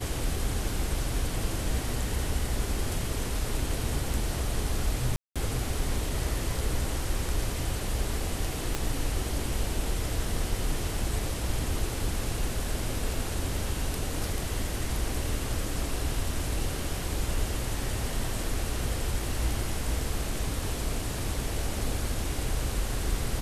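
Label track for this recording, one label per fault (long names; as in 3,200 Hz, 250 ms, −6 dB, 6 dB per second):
5.160000	5.360000	drop-out 196 ms
8.750000	8.750000	click −13 dBFS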